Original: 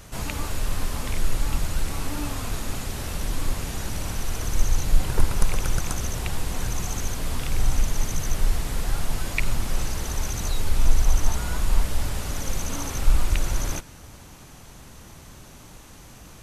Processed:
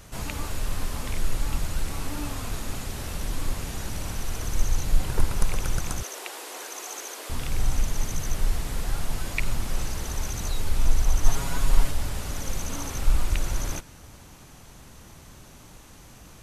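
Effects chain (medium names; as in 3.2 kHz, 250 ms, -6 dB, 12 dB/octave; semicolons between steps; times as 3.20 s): 6.03–7.30 s: steep high-pass 340 Hz 36 dB/octave; 11.24–11.91 s: comb 7.3 ms, depth 97%; trim -2.5 dB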